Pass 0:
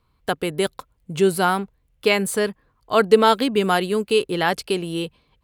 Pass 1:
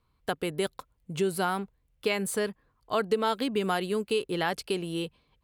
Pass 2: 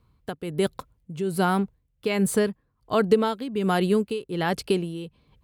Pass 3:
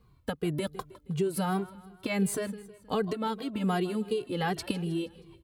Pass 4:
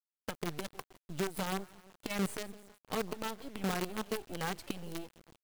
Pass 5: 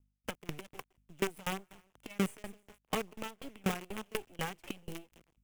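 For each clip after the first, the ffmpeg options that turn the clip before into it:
ffmpeg -i in.wav -af "acompressor=threshold=-18dB:ratio=3,volume=-6dB" out.wav
ffmpeg -i in.wav -af "tremolo=f=1.3:d=0.76,equalizer=frequency=120:width=0.34:gain=9.5,volume=3.5dB" out.wav
ffmpeg -i in.wav -filter_complex "[0:a]acompressor=threshold=-28dB:ratio=6,aecho=1:1:158|316|474|632:0.119|0.063|0.0334|0.0177,asplit=2[link_01][link_02];[link_02]adelay=2,afreqshift=-2.7[link_03];[link_01][link_03]amix=inputs=2:normalize=1,volume=5dB" out.wav
ffmpeg -i in.wav -af "acrusher=bits=5:dc=4:mix=0:aa=0.000001,volume=-7dB" out.wav
ffmpeg -i in.wav -filter_complex "[0:a]aeval=exprs='val(0)+0.000282*(sin(2*PI*50*n/s)+sin(2*PI*2*50*n/s)/2+sin(2*PI*3*50*n/s)/3+sin(2*PI*4*50*n/s)/4+sin(2*PI*5*50*n/s)/5)':channel_layout=same,acrossover=split=350|5500[link_01][link_02][link_03];[link_02]aexciter=amount=1.6:drive=4.3:freq=2200[link_04];[link_01][link_04][link_03]amix=inputs=3:normalize=0,aeval=exprs='val(0)*pow(10,-27*if(lt(mod(4.1*n/s,1),2*abs(4.1)/1000),1-mod(4.1*n/s,1)/(2*abs(4.1)/1000),(mod(4.1*n/s,1)-2*abs(4.1)/1000)/(1-2*abs(4.1)/1000))/20)':channel_layout=same,volume=5dB" out.wav

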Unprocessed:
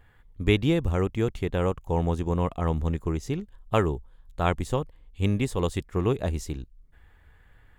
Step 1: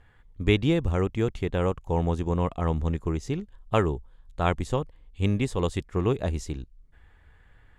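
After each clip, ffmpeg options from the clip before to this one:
ffmpeg -i in.wav -af "lowpass=9100" out.wav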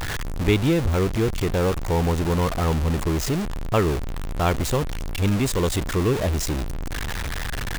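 ffmpeg -i in.wav -af "aeval=exprs='val(0)+0.5*0.0841*sgn(val(0))':channel_layout=same" out.wav

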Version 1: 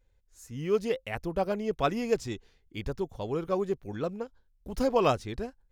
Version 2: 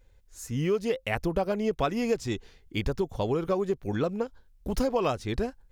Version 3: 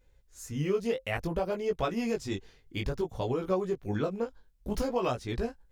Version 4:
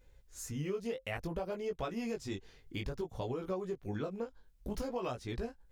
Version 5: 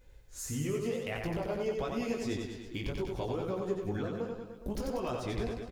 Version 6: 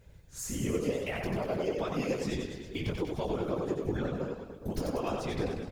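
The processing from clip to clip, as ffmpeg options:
ffmpeg -i in.wav -af "acompressor=threshold=-33dB:ratio=5,volume=9dB" out.wav
ffmpeg -i in.wav -af "flanger=delay=16:depth=5.5:speed=0.58" out.wav
ffmpeg -i in.wav -af "acompressor=threshold=-44dB:ratio=2,volume=2dB" out.wav
ffmpeg -i in.wav -filter_complex "[0:a]alimiter=level_in=5.5dB:limit=-24dB:level=0:latency=1:release=155,volume=-5.5dB,asplit=2[link_01][link_02];[link_02]aecho=0:1:90|189|297.9|417.7|549.5:0.631|0.398|0.251|0.158|0.1[link_03];[link_01][link_03]amix=inputs=2:normalize=0,volume=3.5dB" out.wav
ffmpeg -i in.wav -af "afftfilt=real='hypot(re,im)*cos(2*PI*random(0))':imag='hypot(re,im)*sin(2*PI*random(1))':win_size=512:overlap=0.75,volume=8dB" out.wav

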